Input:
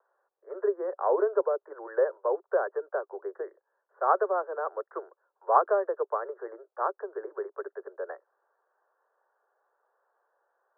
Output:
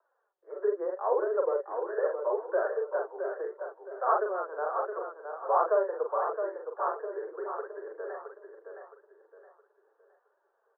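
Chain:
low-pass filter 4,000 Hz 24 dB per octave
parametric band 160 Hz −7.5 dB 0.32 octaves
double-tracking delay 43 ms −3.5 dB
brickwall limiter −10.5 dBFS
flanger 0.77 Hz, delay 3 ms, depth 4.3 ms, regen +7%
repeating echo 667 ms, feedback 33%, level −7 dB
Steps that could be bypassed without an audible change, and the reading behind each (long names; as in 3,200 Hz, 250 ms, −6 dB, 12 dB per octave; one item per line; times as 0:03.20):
low-pass filter 4,000 Hz: nothing at its input above 1,800 Hz
parametric band 160 Hz: nothing at its input below 320 Hz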